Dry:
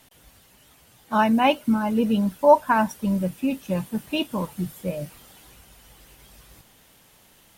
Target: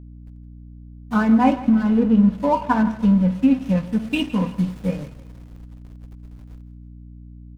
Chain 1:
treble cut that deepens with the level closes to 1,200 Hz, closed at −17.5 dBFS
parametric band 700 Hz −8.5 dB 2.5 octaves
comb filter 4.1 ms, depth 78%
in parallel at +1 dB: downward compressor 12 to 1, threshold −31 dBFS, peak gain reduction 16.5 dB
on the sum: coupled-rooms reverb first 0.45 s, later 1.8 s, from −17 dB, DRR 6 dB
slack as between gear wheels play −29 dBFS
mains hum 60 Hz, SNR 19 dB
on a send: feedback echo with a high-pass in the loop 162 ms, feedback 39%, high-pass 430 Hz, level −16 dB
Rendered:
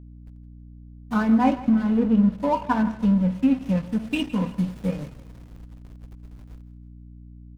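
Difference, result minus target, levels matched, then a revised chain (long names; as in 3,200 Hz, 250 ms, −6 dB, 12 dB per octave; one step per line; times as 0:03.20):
downward compressor: peak gain reduction +10.5 dB
treble cut that deepens with the level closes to 1,200 Hz, closed at −17.5 dBFS
parametric band 700 Hz −8.5 dB 2.5 octaves
comb filter 4.1 ms, depth 78%
in parallel at +1 dB: downward compressor 12 to 1, threshold −19.5 dBFS, peak gain reduction 6 dB
on the sum: coupled-rooms reverb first 0.45 s, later 1.8 s, from −17 dB, DRR 6 dB
slack as between gear wheels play −29 dBFS
mains hum 60 Hz, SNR 19 dB
on a send: feedback echo with a high-pass in the loop 162 ms, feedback 39%, high-pass 430 Hz, level −16 dB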